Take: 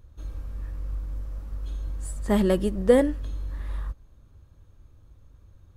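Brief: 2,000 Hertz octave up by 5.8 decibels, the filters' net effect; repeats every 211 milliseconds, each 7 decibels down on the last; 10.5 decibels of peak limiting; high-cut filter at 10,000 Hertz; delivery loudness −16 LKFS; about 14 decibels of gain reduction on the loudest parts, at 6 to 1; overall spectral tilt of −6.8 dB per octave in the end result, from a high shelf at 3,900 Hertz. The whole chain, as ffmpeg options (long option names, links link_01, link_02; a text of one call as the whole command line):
ffmpeg -i in.wav -af "lowpass=10000,equalizer=frequency=2000:width_type=o:gain=8,highshelf=frequency=3900:gain=-7.5,acompressor=threshold=-28dB:ratio=6,alimiter=level_in=3.5dB:limit=-24dB:level=0:latency=1,volume=-3.5dB,aecho=1:1:211|422|633|844|1055:0.447|0.201|0.0905|0.0407|0.0183,volume=21.5dB" out.wav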